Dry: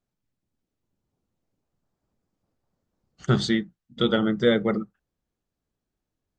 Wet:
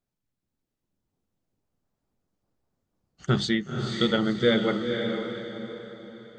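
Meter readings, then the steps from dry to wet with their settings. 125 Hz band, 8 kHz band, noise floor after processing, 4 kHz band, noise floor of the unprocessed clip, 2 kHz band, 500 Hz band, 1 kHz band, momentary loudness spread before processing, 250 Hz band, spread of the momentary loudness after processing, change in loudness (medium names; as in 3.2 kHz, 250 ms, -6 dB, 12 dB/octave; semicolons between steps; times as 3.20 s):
-1.0 dB, -0.5 dB, -85 dBFS, +1.5 dB, -85 dBFS, +1.0 dB, -1.0 dB, 0.0 dB, 15 LU, -1.0 dB, 16 LU, -2.0 dB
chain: echo that smears into a reverb 501 ms, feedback 45%, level -5 dB; dynamic bell 2.6 kHz, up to +4 dB, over -44 dBFS, Q 1.2; trim -2.5 dB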